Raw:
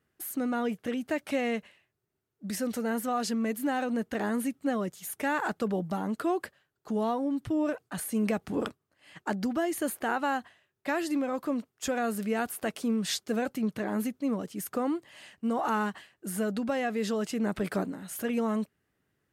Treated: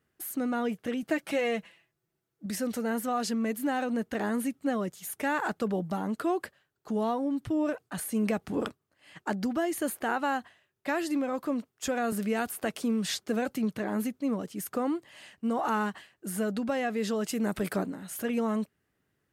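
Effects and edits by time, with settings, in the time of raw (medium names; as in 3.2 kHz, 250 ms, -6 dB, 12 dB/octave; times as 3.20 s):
1.02–2.46 s: comb 6 ms, depth 67%
12.12–13.73 s: three bands compressed up and down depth 40%
17.28–17.73 s: treble shelf 8.3 kHz +12 dB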